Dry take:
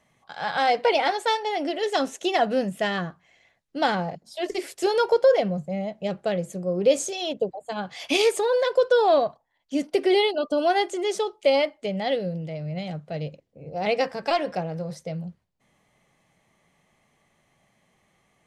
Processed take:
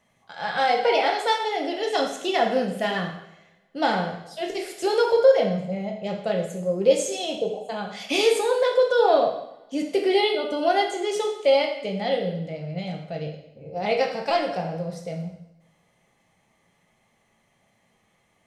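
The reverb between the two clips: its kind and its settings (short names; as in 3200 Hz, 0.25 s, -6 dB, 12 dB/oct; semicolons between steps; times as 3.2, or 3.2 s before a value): two-slope reverb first 0.77 s, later 2.2 s, from -26 dB, DRR 1 dB; gain -2 dB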